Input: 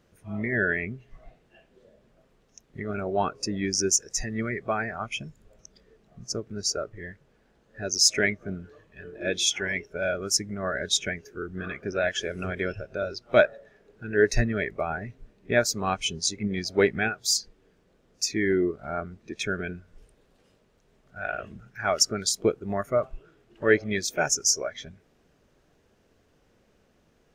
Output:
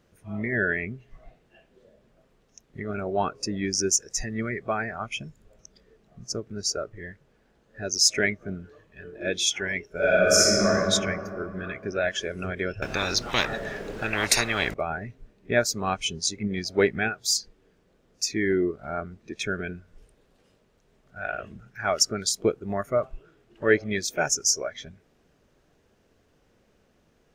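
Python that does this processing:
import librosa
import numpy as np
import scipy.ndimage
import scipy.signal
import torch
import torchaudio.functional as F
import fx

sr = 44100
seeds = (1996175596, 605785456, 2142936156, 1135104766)

y = fx.reverb_throw(x, sr, start_s=9.91, length_s=0.76, rt60_s=2.7, drr_db=-9.0)
y = fx.spectral_comp(y, sr, ratio=10.0, at=(12.82, 14.74))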